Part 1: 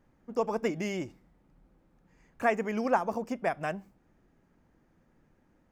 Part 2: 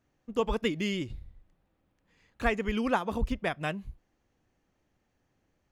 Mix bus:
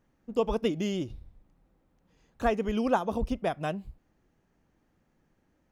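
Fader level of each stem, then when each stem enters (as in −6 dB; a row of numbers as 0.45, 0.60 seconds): −5.0, −2.5 decibels; 0.00, 0.00 seconds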